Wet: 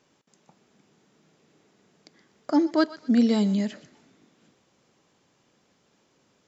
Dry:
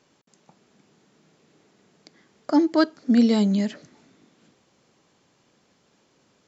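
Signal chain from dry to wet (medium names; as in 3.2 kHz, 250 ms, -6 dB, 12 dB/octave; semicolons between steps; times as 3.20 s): band-stop 4.3 kHz, Q 24; thinning echo 123 ms, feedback 33%, high-pass 930 Hz, level -15 dB; trim -2.5 dB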